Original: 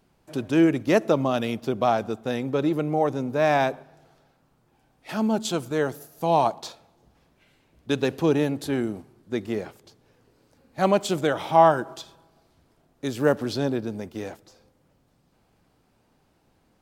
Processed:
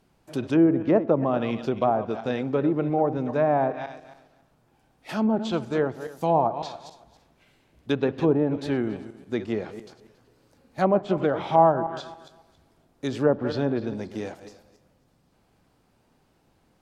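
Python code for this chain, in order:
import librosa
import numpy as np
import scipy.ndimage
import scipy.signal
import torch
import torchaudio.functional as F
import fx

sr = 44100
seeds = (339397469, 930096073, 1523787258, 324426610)

y = fx.reverse_delay_fb(x, sr, ms=138, feedback_pct=42, wet_db=-12)
y = fx.env_lowpass_down(y, sr, base_hz=950.0, full_db=-17.0)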